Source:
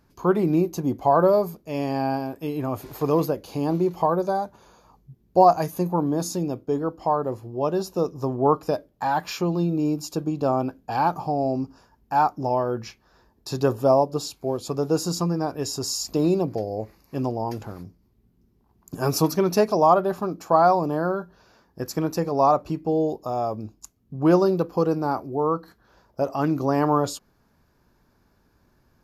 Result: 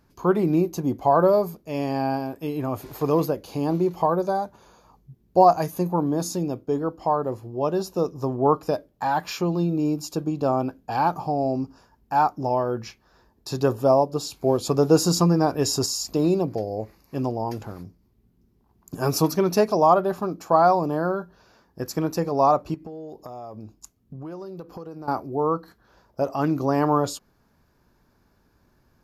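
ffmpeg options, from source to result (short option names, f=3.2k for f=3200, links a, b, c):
-filter_complex "[0:a]asettb=1/sr,asplit=3[a][b][c];[a]atrim=end=22.744[d];[b]atrim=start=22.74:end=25.08,asetpts=PTS-STARTPTS,afade=t=in:d=0.004:c=qsin,afade=t=out:st=2.336:d=0.004:c=qsin,acompressor=threshold=-34dB:ratio=8:attack=3.2:release=140:knee=1:detection=peak[e];[c]atrim=start=25.076[f];[d][e]acrossfade=d=0.004:c1=hsin:c2=qsin[g];[g][f]acrossfade=d=0.004:c1=qsin:c2=hsin,asplit=3[h][i][j];[h]atrim=end=14.322[k];[i]atrim=start=14.318:end=15.862,asetpts=PTS-STARTPTS,volume=5.5dB[l];[j]atrim=start=15.858[m];[k][l]acrossfade=d=0.004:c1=hsin:c2=hsin[n];[n][m]acrossfade=d=0.004:c1=hsin:c2=hsin"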